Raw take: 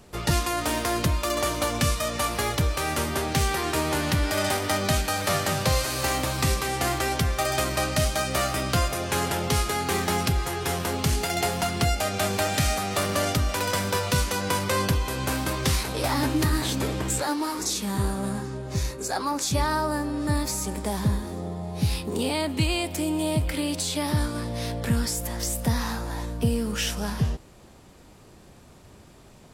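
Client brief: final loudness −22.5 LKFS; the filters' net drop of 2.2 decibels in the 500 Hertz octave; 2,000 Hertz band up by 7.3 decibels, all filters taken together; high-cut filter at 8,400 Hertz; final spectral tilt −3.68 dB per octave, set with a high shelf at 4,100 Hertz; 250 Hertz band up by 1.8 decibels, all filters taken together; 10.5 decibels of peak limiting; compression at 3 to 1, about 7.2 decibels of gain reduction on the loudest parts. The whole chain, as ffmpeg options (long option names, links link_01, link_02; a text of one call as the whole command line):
ffmpeg -i in.wav -af "lowpass=8400,equalizer=frequency=250:width_type=o:gain=3.5,equalizer=frequency=500:width_type=o:gain=-4.5,equalizer=frequency=2000:width_type=o:gain=8.5,highshelf=frequency=4100:gain=3.5,acompressor=threshold=-27dB:ratio=3,volume=8.5dB,alimiter=limit=-13dB:level=0:latency=1" out.wav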